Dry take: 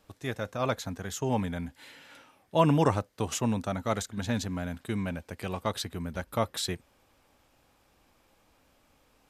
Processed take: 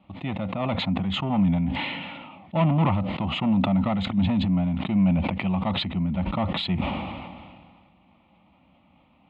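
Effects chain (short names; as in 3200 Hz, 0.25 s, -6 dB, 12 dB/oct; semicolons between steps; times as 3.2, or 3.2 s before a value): low shelf 440 Hz +9.5 dB; soft clip -20.5 dBFS, distortion -8 dB; speaker cabinet 120–3200 Hz, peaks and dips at 120 Hz -8 dB, 190 Hz +7 dB, 410 Hz +5 dB, 1100 Hz -3 dB; fixed phaser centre 1600 Hz, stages 6; sustainer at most 31 dB/s; gain +5.5 dB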